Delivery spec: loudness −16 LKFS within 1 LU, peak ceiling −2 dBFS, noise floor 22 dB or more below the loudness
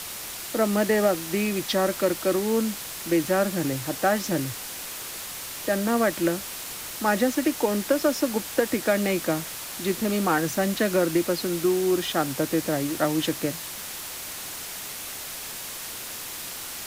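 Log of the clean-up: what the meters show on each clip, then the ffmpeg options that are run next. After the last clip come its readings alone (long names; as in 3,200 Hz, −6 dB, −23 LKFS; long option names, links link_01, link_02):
background noise floor −36 dBFS; target noise floor −48 dBFS; integrated loudness −26.0 LKFS; sample peak −9.0 dBFS; target loudness −16.0 LKFS
→ -af "afftdn=noise_reduction=12:noise_floor=-36"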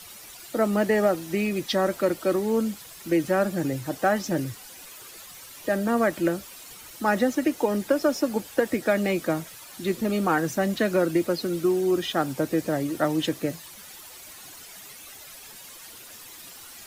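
background noise floor −45 dBFS; target noise floor −48 dBFS
→ -af "afftdn=noise_reduction=6:noise_floor=-45"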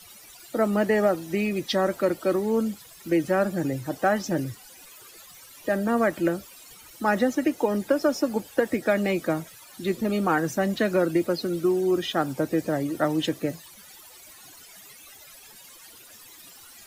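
background noise floor −49 dBFS; integrated loudness −25.5 LKFS; sample peak −9.5 dBFS; target loudness −16.0 LKFS
→ -af "volume=9.5dB,alimiter=limit=-2dB:level=0:latency=1"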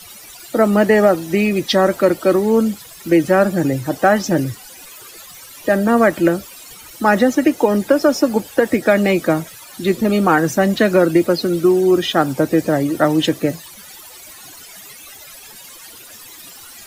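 integrated loudness −16.0 LKFS; sample peak −2.0 dBFS; background noise floor −39 dBFS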